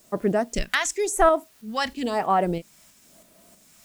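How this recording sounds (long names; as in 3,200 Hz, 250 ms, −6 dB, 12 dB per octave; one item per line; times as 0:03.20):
phaser sweep stages 2, 0.97 Hz, lowest notch 410–4,600 Hz
a quantiser's noise floor 10 bits, dither triangular
tremolo saw up 3.1 Hz, depth 40%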